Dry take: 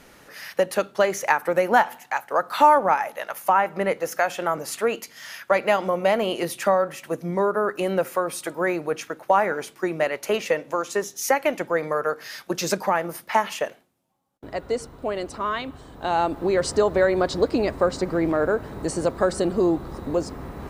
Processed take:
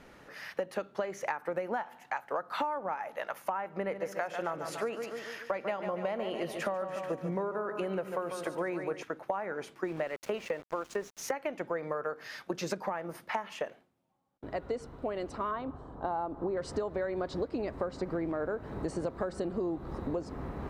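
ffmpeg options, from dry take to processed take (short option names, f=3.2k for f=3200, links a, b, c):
-filter_complex "[0:a]asettb=1/sr,asplit=3[a][b][c];[a]atrim=end=3.764[d];[b]atrim=start=3.76:end=9.03,asetpts=PTS-STARTPTS,afade=t=in:d=0.004:c=qsin,afade=t=out:st=5.266:d=0.004:c=qsin,aecho=1:1:144|288|432|576|720|864:0.316|0.168|0.0888|0.0471|0.025|0.0132,atrim=end_sample=232407[e];[c]atrim=start=9.026[f];[d][e]acrossfade=d=0.004:c1=hsin:c2=qsin[g];[g][f]acrossfade=d=0.004:c1=qsin:c2=hsin,asettb=1/sr,asplit=3[h][i][j];[h]atrim=end=9.844[k];[i]atrim=start=9.84:end=11.33,asetpts=PTS-STARTPTS,afade=t=in:d=0.004:c=qsin,afade=t=out:st=1.486:d=0.004:c=qsin,aeval=exprs='val(0)*gte(abs(val(0)),0.0178)':c=same[l];[j]atrim=start=11.326[m];[k][l]acrossfade=d=0.004:c1=hsin:c2=qsin[n];[n][m]acrossfade=d=0.004:c1=qsin:c2=hsin,asettb=1/sr,asplit=3[o][p][q];[o]atrim=end=15.514[r];[p]atrim=start=15.51:end=16.57,asetpts=PTS-STARTPTS,afade=t=in:d=0.004:c=qsin,afade=t=out:st=1.056:d=0.004:c=qsin,highshelf=f=1.6k:t=q:w=1.5:g=-10[s];[q]atrim=start=16.566[t];[r][s]acrossfade=d=0.004:c1=hsin:c2=qsin[u];[u][t]acrossfade=d=0.004:c1=qsin:c2=hsin,lowpass=f=2.3k:p=1,acompressor=threshold=-27dB:ratio=10,volume=-3dB"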